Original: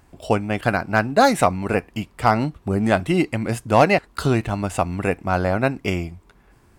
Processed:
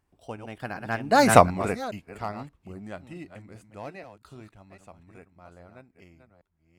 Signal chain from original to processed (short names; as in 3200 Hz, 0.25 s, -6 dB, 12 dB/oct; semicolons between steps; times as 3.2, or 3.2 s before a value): reverse delay 0.391 s, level -8 dB; Doppler pass-by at 1.36, 16 m/s, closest 1.4 m; gain +3.5 dB